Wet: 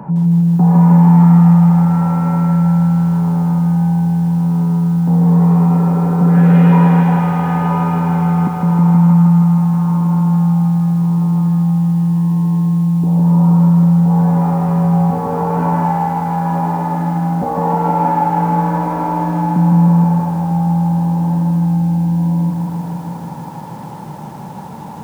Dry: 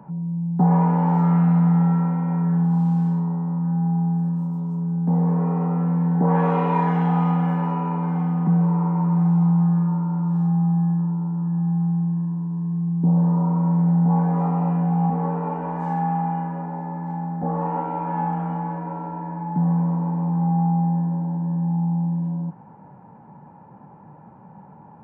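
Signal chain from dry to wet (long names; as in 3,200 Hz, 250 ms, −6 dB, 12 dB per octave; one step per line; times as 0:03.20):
0:05.78–0:06.69: healed spectral selection 250–1,400 Hz before
0:15.08–0:15.58: high-frequency loss of the air 250 metres
feedback echo with a band-pass in the loop 72 ms, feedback 74%, band-pass 880 Hz, level −22 dB
boost into a limiter +22.5 dB
feedback echo at a low word length 158 ms, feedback 80%, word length 6 bits, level −4 dB
level −8.5 dB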